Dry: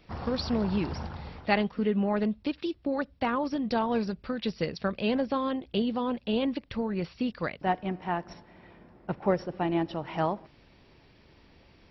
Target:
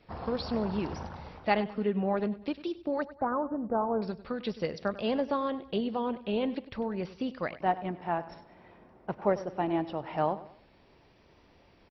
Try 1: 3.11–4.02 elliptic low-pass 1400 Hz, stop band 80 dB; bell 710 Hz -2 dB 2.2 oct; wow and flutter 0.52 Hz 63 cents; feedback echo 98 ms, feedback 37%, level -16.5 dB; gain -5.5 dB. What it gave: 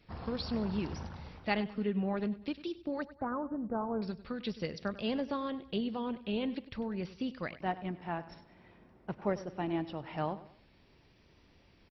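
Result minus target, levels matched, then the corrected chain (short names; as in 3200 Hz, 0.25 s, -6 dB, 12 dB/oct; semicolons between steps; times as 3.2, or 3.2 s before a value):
1000 Hz band -3.0 dB
3.11–4.02 elliptic low-pass 1400 Hz, stop band 80 dB; bell 710 Hz +6 dB 2.2 oct; wow and flutter 0.52 Hz 63 cents; feedback echo 98 ms, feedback 37%, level -16.5 dB; gain -5.5 dB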